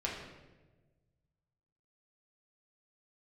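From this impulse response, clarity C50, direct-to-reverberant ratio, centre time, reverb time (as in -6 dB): 3.0 dB, -4.5 dB, 53 ms, 1.2 s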